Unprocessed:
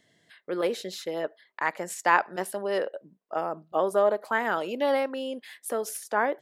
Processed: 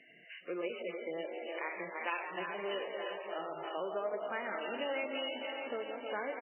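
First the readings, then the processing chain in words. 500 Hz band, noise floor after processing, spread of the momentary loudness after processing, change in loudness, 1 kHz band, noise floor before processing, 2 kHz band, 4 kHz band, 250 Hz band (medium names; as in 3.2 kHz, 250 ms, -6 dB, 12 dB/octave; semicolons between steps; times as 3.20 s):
-10.5 dB, -59 dBFS, 4 LU, -10.5 dB, -12.5 dB, -69 dBFS, -9.5 dB, -3.0 dB, -9.5 dB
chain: backward echo that repeats 154 ms, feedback 81%, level -10 dB; high-pass 230 Hz 12 dB/octave; high-order bell 2.9 kHz +12.5 dB 1 oct; de-hum 300 Hz, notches 3; harmonic-percussive split harmonic +7 dB; dynamic bell 840 Hz, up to -3 dB, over -29 dBFS, Q 1.6; compression 2.5:1, threshold -42 dBFS, peak gain reduction 20 dB; frequency-shifting echo 170 ms, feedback 42%, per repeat +57 Hz, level -9.5 dB; trim -1 dB; MP3 8 kbps 12 kHz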